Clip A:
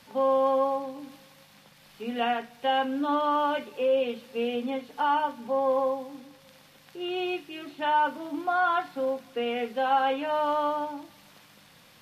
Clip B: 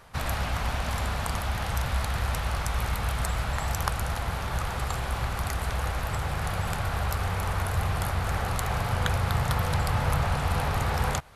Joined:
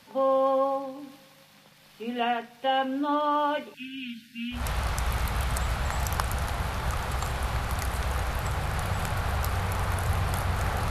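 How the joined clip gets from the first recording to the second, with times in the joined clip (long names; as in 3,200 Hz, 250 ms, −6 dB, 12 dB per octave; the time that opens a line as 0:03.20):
clip A
0:03.74–0:04.68: linear-phase brick-wall band-stop 300–1,400 Hz
0:04.59: continue with clip B from 0:02.27, crossfade 0.18 s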